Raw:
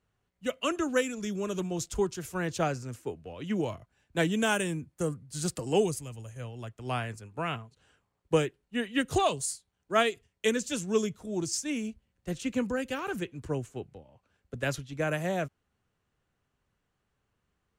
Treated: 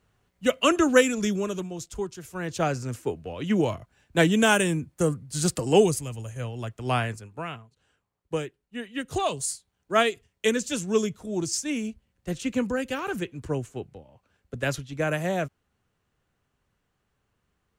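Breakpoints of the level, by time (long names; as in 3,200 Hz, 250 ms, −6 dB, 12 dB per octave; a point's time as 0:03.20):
0:01.25 +9 dB
0:01.74 −3 dB
0:02.27 −3 dB
0:02.86 +7 dB
0:07.06 +7 dB
0:07.55 −4 dB
0:09.03 −4 dB
0:09.47 +3.5 dB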